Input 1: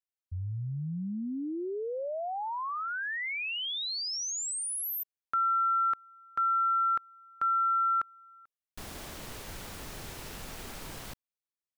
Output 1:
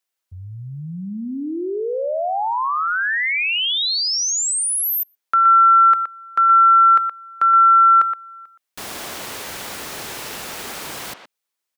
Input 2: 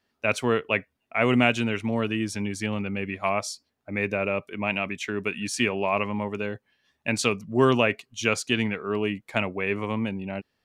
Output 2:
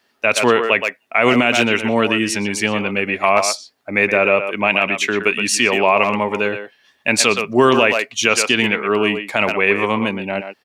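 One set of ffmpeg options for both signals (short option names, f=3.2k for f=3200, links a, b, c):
-filter_complex "[0:a]highpass=f=440:p=1,asplit=2[a][b];[b]adelay=120,highpass=300,lowpass=3.4k,asoftclip=type=hard:threshold=-15.5dB,volume=-8dB[c];[a][c]amix=inputs=2:normalize=0,alimiter=level_in=14.5dB:limit=-1dB:release=50:level=0:latency=1,volume=-1dB"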